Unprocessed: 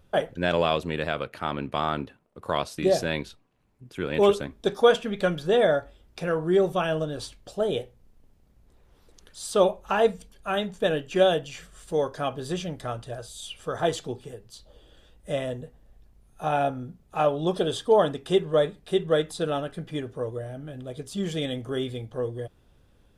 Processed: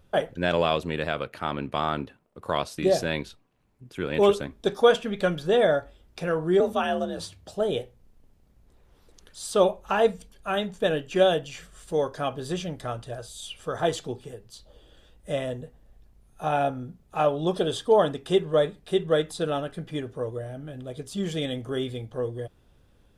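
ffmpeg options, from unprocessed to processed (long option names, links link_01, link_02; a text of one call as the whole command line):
ffmpeg -i in.wav -filter_complex "[0:a]asettb=1/sr,asplit=3[link_01][link_02][link_03];[link_01]atrim=end=6.604[link_04];[link_02]atrim=start=6.6:end=7.54,asetpts=PTS-STARTPTS,afade=type=in:duration=0.004:curve=qsin,afade=type=out:start_time=0.936:duration=0.004:curve=qsin,afreqshift=53[link_05];[link_03]atrim=start=7.536[link_06];[link_04][link_05]acrossfade=duration=0.004:curve1=hsin:curve2=qsin[link_07];[link_07][link_06]acrossfade=duration=0.004:curve1=qsin:curve2=hsin" out.wav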